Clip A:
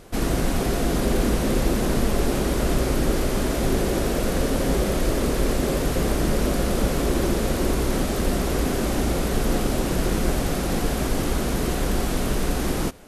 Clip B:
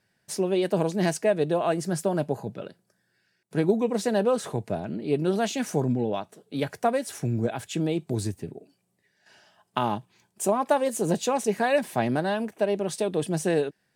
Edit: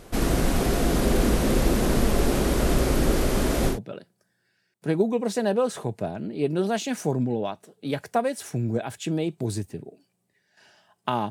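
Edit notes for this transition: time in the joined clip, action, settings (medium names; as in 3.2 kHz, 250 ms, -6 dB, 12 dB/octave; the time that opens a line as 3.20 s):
clip A
3.73 s: go over to clip B from 2.42 s, crossfade 0.12 s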